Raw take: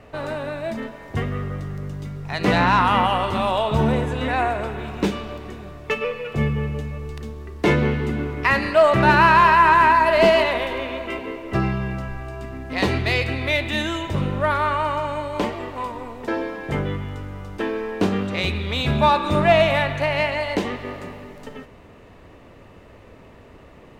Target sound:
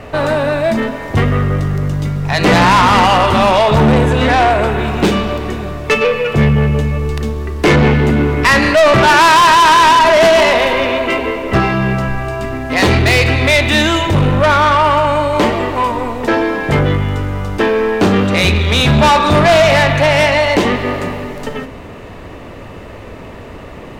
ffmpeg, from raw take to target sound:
ffmpeg -i in.wav -af "bandreject=frequency=65.85:width_type=h:width=4,bandreject=frequency=131.7:width_type=h:width=4,bandreject=frequency=197.55:width_type=h:width=4,bandreject=frequency=263.4:width_type=h:width=4,bandreject=frequency=329.25:width_type=h:width=4,bandreject=frequency=395.1:width_type=h:width=4,bandreject=frequency=460.95:width_type=h:width=4,bandreject=frequency=526.8:width_type=h:width=4,acontrast=54,asoftclip=type=tanh:threshold=-15dB,volume=9dB" out.wav

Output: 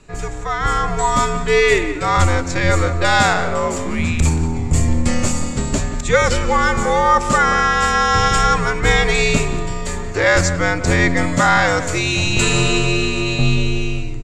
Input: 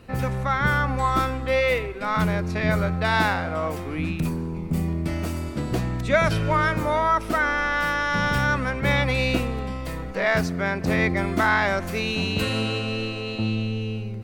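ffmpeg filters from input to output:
ffmpeg -i in.wav -filter_complex "[0:a]afreqshift=-88,lowpass=frequency=7300:width_type=q:width=8.6,asplit=2[link_01][link_02];[link_02]adelay=179,lowpass=frequency=2600:poles=1,volume=-11dB,asplit=2[link_03][link_04];[link_04]adelay=179,lowpass=frequency=2600:poles=1,volume=0.17[link_05];[link_03][link_05]amix=inputs=2:normalize=0[link_06];[link_01][link_06]amix=inputs=2:normalize=0,dynaudnorm=framelen=150:gausssize=9:maxgain=11.5dB" out.wav

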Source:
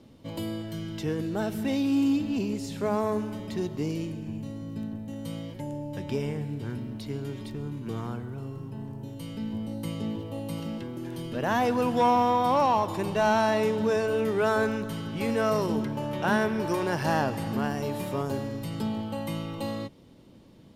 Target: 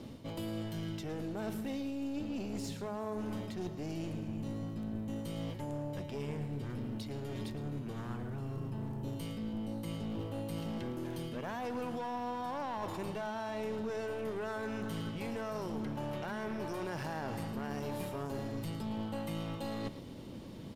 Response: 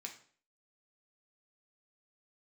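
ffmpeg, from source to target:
-af "alimiter=limit=-19.5dB:level=0:latency=1,areverse,acompressor=threshold=-41dB:ratio=10,areverse,aeval=exprs='clip(val(0),-1,0.00562)':channel_layout=same,aecho=1:1:111:0.2,volume=6.5dB"

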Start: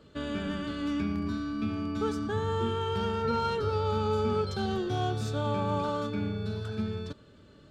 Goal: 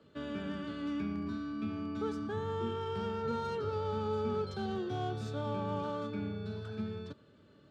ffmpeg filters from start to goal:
ffmpeg -i in.wav -filter_complex "[0:a]highpass=98,highshelf=frequency=6000:gain=-10.5,acrossover=split=140|730[link_01][link_02][link_03];[link_03]asoftclip=type=tanh:threshold=-33dB[link_04];[link_01][link_02][link_04]amix=inputs=3:normalize=0,volume=-5dB" out.wav

